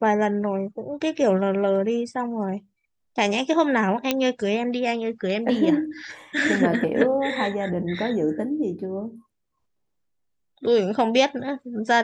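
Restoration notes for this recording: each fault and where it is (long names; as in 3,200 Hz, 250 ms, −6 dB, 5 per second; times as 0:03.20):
0:04.11: click −6 dBFS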